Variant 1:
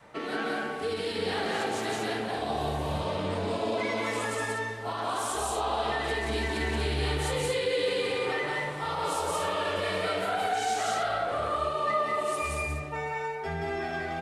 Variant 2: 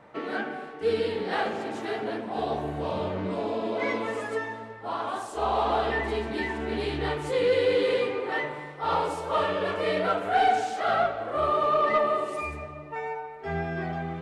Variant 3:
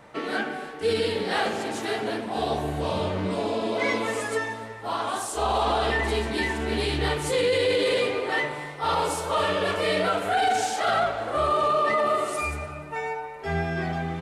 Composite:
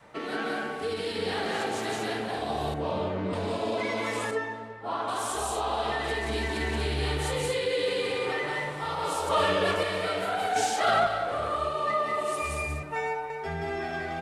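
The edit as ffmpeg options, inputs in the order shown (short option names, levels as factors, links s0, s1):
-filter_complex "[1:a]asplit=2[s0][s1];[2:a]asplit=3[s2][s3][s4];[0:a]asplit=6[s5][s6][s7][s8][s9][s10];[s5]atrim=end=2.742[s11];[s0]atrim=start=2.738:end=3.332[s12];[s6]atrim=start=3.328:end=4.312[s13];[s1]atrim=start=4.308:end=5.082[s14];[s7]atrim=start=5.078:end=9.292[s15];[s2]atrim=start=9.288:end=9.832[s16];[s8]atrim=start=9.828:end=10.562[s17];[s3]atrim=start=10.558:end=11.072[s18];[s9]atrim=start=11.068:end=12.832[s19];[s4]atrim=start=12.828:end=13.302[s20];[s10]atrim=start=13.298[s21];[s11][s12]acrossfade=d=0.004:c1=hsin:c2=hsin[s22];[s22][s13]acrossfade=d=0.004:c1=hsin:c2=hsin[s23];[s23][s14]acrossfade=d=0.004:c1=hsin:c2=hsin[s24];[s24][s15]acrossfade=d=0.004:c1=hsin:c2=hsin[s25];[s25][s16]acrossfade=d=0.004:c1=hsin:c2=hsin[s26];[s26][s17]acrossfade=d=0.004:c1=hsin:c2=hsin[s27];[s27][s18]acrossfade=d=0.004:c1=hsin:c2=hsin[s28];[s28][s19]acrossfade=d=0.004:c1=hsin:c2=hsin[s29];[s29][s20]acrossfade=d=0.004:c1=hsin:c2=hsin[s30];[s30][s21]acrossfade=d=0.004:c1=hsin:c2=hsin"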